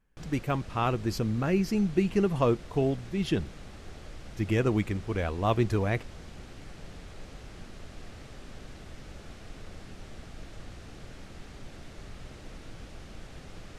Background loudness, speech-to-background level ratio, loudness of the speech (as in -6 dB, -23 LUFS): -47.5 LUFS, 19.0 dB, -28.5 LUFS